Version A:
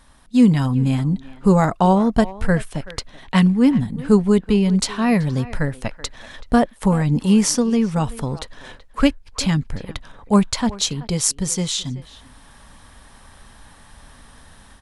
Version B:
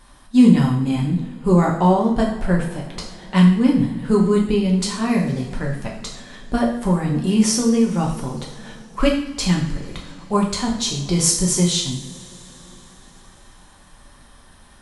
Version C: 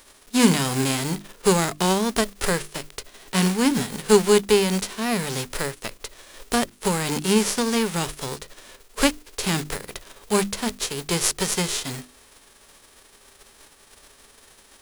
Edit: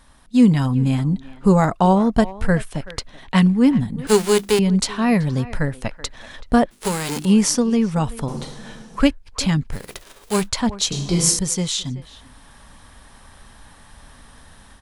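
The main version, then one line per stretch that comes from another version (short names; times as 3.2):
A
4.07–4.59 from C
6.71–7.25 from C
8.28–9 from B
9.79–10.42 from C, crossfade 0.16 s
10.92–11.39 from B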